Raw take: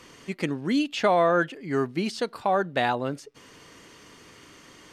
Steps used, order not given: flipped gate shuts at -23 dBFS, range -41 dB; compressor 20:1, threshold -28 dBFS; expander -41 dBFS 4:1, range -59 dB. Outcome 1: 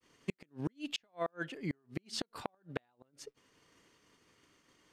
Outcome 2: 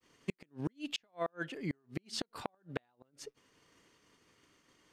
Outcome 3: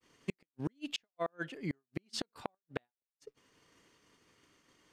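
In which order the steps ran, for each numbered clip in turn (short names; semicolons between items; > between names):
compressor > expander > flipped gate; expander > compressor > flipped gate; compressor > flipped gate > expander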